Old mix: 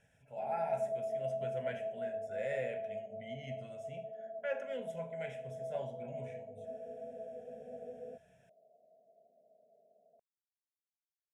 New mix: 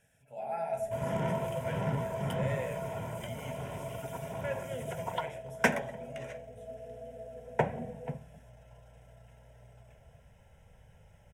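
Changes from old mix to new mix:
second sound: unmuted
master: remove high-frequency loss of the air 63 metres

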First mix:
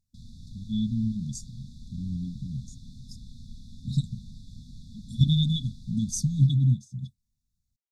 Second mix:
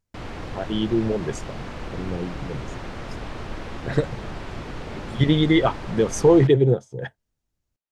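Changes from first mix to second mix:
background +9.0 dB
master: remove linear-phase brick-wall band-stop 260–3,400 Hz

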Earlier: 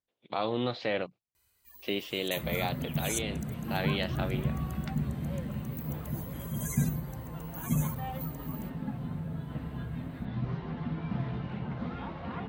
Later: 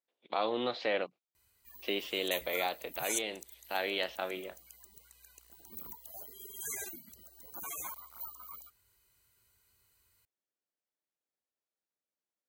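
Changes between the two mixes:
speech: add high-pass filter 330 Hz 12 dB per octave
second sound: muted

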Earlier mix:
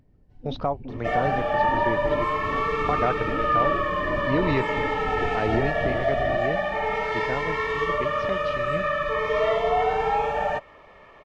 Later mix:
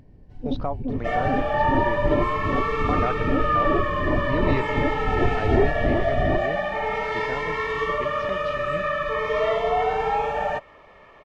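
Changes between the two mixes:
speech −3.0 dB
first sound +9.5 dB

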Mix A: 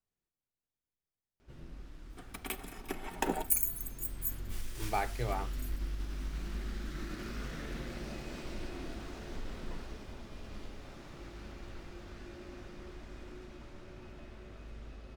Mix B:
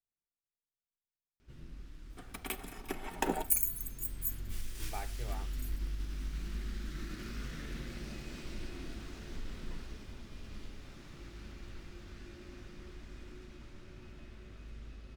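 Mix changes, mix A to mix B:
speech −10.5 dB
first sound: add parametric band 680 Hz −8.5 dB 1.7 octaves

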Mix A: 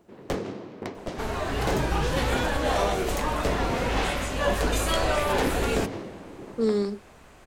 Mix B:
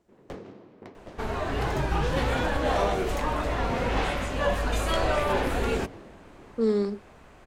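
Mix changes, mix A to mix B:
first sound −10.5 dB
master: add high-shelf EQ 4,400 Hz −9 dB

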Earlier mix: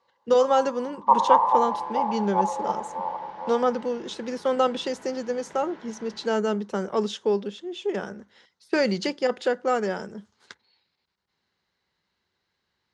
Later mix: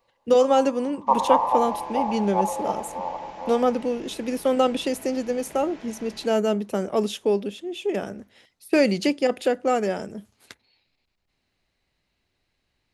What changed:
second sound: remove high-frequency loss of the air 170 metres
master: remove loudspeaker in its box 110–6,700 Hz, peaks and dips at 120 Hz −8 dB, 280 Hz −9 dB, 650 Hz −7 dB, 970 Hz +4 dB, 1,500 Hz +4 dB, 2,500 Hz −8 dB

